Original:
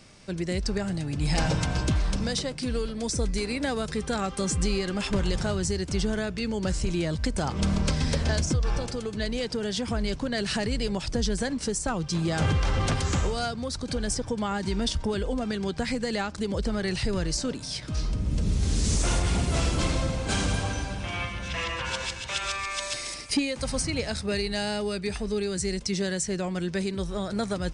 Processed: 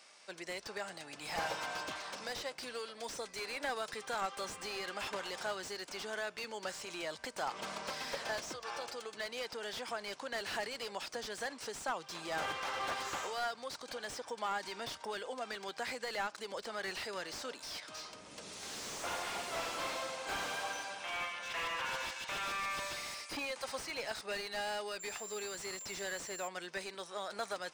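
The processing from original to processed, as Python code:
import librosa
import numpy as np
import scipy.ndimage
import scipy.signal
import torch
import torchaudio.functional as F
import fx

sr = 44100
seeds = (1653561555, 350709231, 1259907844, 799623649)

y = scipy.signal.sosfilt(scipy.signal.cheby1(2, 1.0, 790.0, 'highpass', fs=sr, output='sos'), x)
y = fx.dmg_tone(y, sr, hz=7300.0, level_db=-39.0, at=(24.99, 26.47), fade=0.02)
y = fx.slew_limit(y, sr, full_power_hz=52.0)
y = y * librosa.db_to_amplitude(-3.5)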